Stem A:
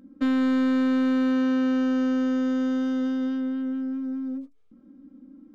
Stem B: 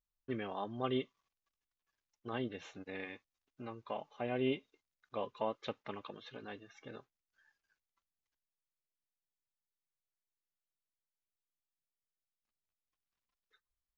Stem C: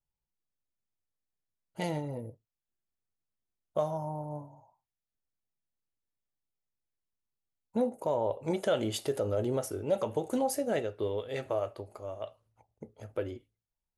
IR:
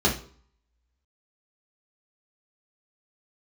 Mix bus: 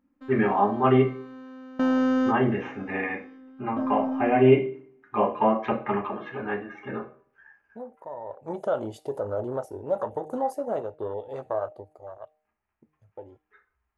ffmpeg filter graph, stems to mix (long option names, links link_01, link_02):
-filter_complex "[0:a]volume=-0.5dB[link_01];[1:a]highshelf=frequency=2900:width_type=q:width=3:gain=-10.5,volume=2dB,asplit=2[link_02][link_03];[link_03]volume=-8.5dB[link_04];[2:a]agate=range=-10dB:threshold=-49dB:ratio=16:detection=peak,afwtdn=0.0126,equalizer=frequency=7100:width=0.31:gain=5.5,volume=-3.5dB,afade=type=in:start_time=8.25:duration=0.37:silence=0.281838,afade=type=out:start_time=11.82:duration=0.48:silence=0.354813,asplit=2[link_05][link_06];[link_06]apad=whole_len=244399[link_07];[link_01][link_07]sidechaingate=range=-22dB:threshold=-57dB:ratio=16:detection=peak[link_08];[3:a]atrim=start_sample=2205[link_09];[link_04][link_09]afir=irnorm=-1:irlink=0[link_10];[link_08][link_02][link_05][link_10]amix=inputs=4:normalize=0,equalizer=frequency=900:width=0.85:gain=9.5,bandreject=frequency=153.9:width_type=h:width=4,bandreject=frequency=307.8:width_type=h:width=4,bandreject=frequency=461.7:width_type=h:width=4,bandreject=frequency=615.6:width_type=h:width=4,bandreject=frequency=769.5:width_type=h:width=4"